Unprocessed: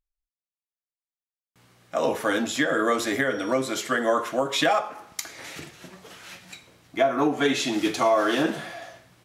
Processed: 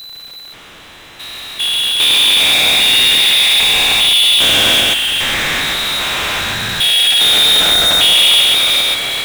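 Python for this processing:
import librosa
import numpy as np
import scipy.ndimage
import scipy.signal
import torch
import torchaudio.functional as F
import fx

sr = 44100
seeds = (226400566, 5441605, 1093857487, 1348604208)

p1 = fx.spec_steps(x, sr, hold_ms=400)
p2 = fx.freq_invert(p1, sr, carrier_hz=4000)
p3 = p2 + fx.echo_single(p2, sr, ms=133, db=-3.5, dry=0)
p4 = fx.power_curve(p3, sr, exponent=0.35)
y = p4 * librosa.db_to_amplitude(6.5)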